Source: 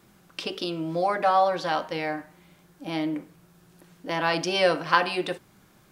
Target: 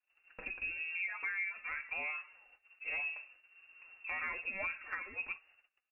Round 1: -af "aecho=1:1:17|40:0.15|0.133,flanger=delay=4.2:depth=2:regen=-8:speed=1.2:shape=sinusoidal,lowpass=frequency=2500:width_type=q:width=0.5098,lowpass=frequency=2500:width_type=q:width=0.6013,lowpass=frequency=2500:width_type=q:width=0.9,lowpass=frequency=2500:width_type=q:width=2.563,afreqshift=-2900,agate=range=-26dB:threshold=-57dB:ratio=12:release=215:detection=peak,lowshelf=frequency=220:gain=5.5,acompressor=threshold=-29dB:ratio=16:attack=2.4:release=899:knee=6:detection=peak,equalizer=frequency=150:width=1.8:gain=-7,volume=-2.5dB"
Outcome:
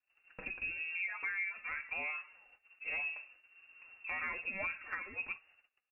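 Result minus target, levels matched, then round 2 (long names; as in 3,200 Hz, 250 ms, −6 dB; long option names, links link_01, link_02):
125 Hz band +3.5 dB
-af "aecho=1:1:17|40:0.15|0.133,flanger=delay=4.2:depth=2:regen=-8:speed=1.2:shape=sinusoidal,lowpass=frequency=2500:width_type=q:width=0.5098,lowpass=frequency=2500:width_type=q:width=0.6013,lowpass=frequency=2500:width_type=q:width=0.9,lowpass=frequency=2500:width_type=q:width=2.563,afreqshift=-2900,agate=range=-26dB:threshold=-57dB:ratio=12:release=215:detection=peak,lowshelf=frequency=220:gain=5.5,acompressor=threshold=-29dB:ratio=16:attack=2.4:release=899:knee=6:detection=peak,equalizer=frequency=150:width=1.8:gain=-17,volume=-2.5dB"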